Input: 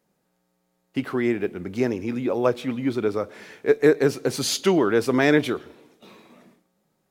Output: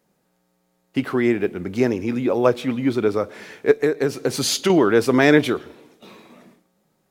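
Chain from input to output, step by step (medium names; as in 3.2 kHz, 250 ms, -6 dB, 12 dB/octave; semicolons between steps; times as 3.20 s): 3.71–4.70 s: compression 6:1, threshold -20 dBFS, peak gain reduction 9 dB; trim +4 dB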